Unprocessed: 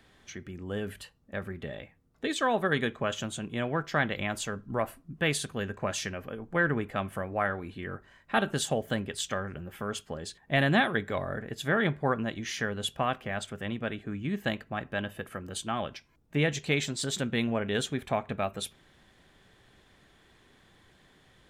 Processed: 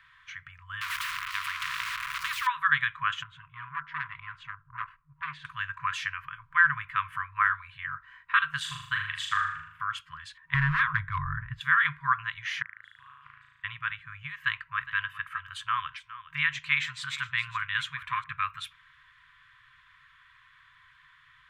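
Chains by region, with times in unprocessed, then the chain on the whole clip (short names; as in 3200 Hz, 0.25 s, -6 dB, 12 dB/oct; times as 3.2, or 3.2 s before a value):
0.81–2.47 zero-crossing step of -44 dBFS + de-esser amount 70% + spectral compressor 10:1
3.23–5.45 tape spacing loss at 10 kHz 33 dB + core saturation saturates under 1500 Hz
8.6–9.8 expander -37 dBFS + flutter echo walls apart 6.7 m, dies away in 0.65 s
10.54–11.61 tilt -4.5 dB/oct + hard clip -14 dBFS
12.62–13.64 flipped gate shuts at -30 dBFS, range -32 dB + flutter echo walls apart 6.3 m, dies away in 1.4 s + Doppler distortion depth 0.57 ms
14.4–18.24 bell 170 Hz -8 dB 0.43 oct + echo 0.412 s -15 dB
whole clip: FFT band-reject 160–960 Hz; three-band isolator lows -17 dB, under 560 Hz, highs -21 dB, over 2800 Hz; gain +8.5 dB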